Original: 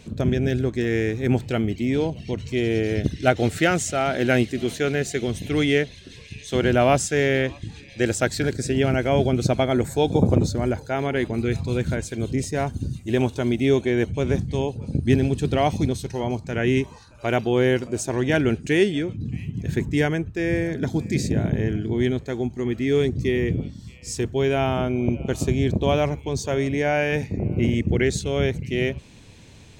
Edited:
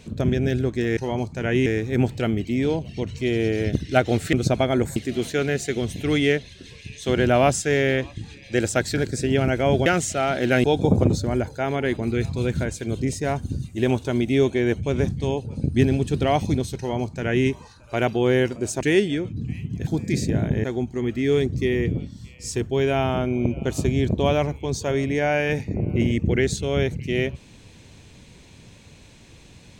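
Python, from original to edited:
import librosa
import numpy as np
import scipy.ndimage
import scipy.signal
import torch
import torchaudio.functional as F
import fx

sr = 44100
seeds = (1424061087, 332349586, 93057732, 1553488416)

y = fx.edit(x, sr, fx.swap(start_s=3.64, length_s=0.78, other_s=9.32, other_length_s=0.63),
    fx.duplicate(start_s=16.09, length_s=0.69, to_s=0.97),
    fx.cut(start_s=18.12, length_s=0.53),
    fx.cut(start_s=19.71, length_s=1.18),
    fx.cut(start_s=21.66, length_s=0.61), tone=tone)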